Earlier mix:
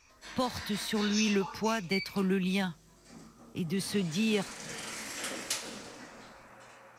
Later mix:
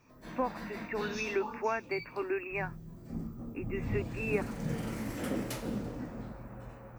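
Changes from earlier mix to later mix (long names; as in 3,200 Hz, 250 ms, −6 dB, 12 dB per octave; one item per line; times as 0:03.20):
speech: add linear-phase brick-wall band-pass 240–2,800 Hz
background: remove meter weighting curve ITU-R 468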